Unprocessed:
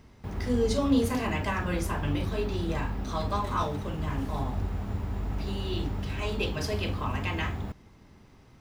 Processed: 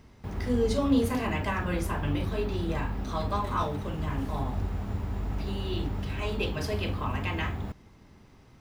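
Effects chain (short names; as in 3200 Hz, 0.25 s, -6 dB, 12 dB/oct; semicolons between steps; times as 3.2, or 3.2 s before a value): dynamic EQ 6100 Hz, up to -4 dB, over -53 dBFS, Q 1.1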